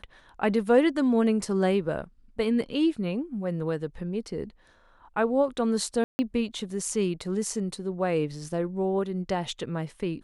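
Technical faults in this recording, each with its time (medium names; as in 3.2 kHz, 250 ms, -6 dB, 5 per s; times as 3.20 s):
6.04–6.19 s: dropout 150 ms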